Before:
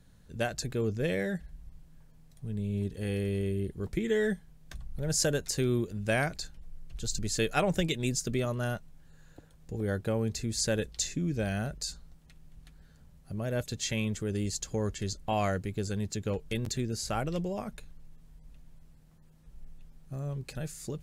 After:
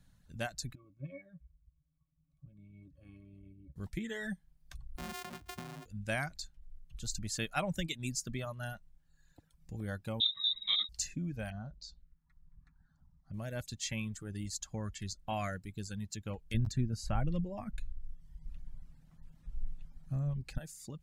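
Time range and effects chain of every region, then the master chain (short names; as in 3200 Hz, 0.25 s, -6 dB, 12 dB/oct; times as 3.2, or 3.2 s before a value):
0.75–3.76 high shelf 5000 Hz +11 dB + octave resonator C#, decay 0.12 s
4.97–5.86 sample sorter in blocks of 128 samples + compressor 16:1, threshold -30 dBFS + frequency shift +34 Hz
10.2–10.89 low shelf 280 Hz +11 dB + inverted band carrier 3800 Hz + ensemble effect
11.5–13.34 envelope phaser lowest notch 390 Hz, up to 2400 Hz, full sweep at -32 dBFS + air absorption 160 m
16.54–20.58 tilt -3 dB/oct + mismatched tape noise reduction encoder only
whole clip: bell 420 Hz -11.5 dB 0.63 oct; reverb removal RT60 1.4 s; gain -4.5 dB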